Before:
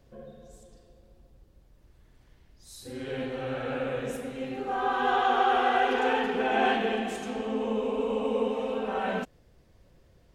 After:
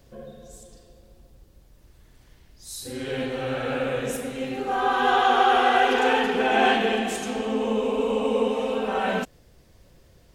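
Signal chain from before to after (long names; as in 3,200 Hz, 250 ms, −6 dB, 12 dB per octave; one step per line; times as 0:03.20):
high-shelf EQ 3,800 Hz +8 dB
level +4.5 dB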